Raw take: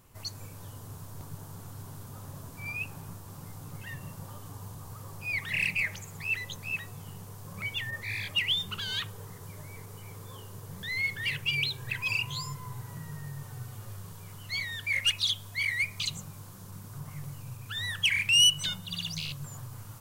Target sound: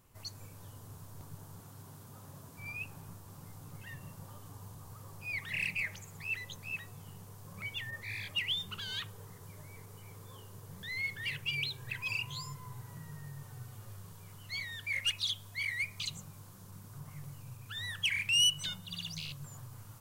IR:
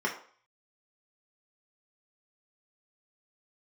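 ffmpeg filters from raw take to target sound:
-filter_complex "[0:a]asettb=1/sr,asplit=3[s0][s1][s2];[s0]atrim=end=1.604[s3];[s1]atrim=start=1.6:end=2.57,asetpts=PTS-STARTPTS,afade=t=in:d=0.004:c=qsin,afade=t=out:st=0.966:d=0.004:c=qsin,highpass=98[s4];[s2]atrim=start=2.566[s5];[s3][s4]acrossfade=d=0.004:c1=hsin:c2=qsin[s6];[s6][s5]acrossfade=d=0.004:c1=qsin:c2=hsin,volume=0.501"

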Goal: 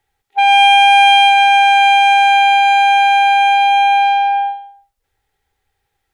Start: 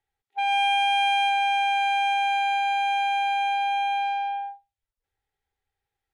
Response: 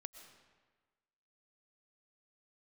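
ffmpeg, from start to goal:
-filter_complex "[0:a]asplit=2[s0][s1];[1:a]atrim=start_sample=2205,afade=t=out:st=0.36:d=0.01,atrim=end_sample=16317[s2];[s1][s2]afir=irnorm=-1:irlink=0,volume=1.68[s3];[s0][s3]amix=inputs=2:normalize=0,volume=2.66"

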